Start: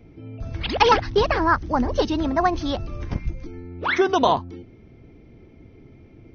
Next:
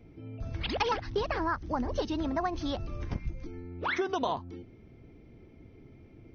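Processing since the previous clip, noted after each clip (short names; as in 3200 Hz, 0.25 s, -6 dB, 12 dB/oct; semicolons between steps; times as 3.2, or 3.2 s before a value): compressor 3:1, threshold -23 dBFS, peak gain reduction 9.5 dB; gain -5.5 dB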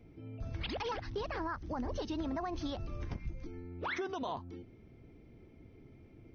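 limiter -25.5 dBFS, peak gain reduction 9 dB; gain -3.5 dB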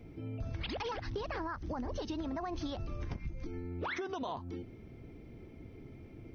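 compressor, threshold -41 dBFS, peak gain reduction 8 dB; gain +6 dB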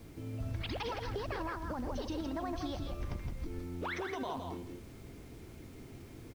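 added noise pink -60 dBFS; echo 0.165 s -5.5 dB; on a send at -16 dB: reverb RT60 0.55 s, pre-delay 0.108 s; on the sum: gain -1 dB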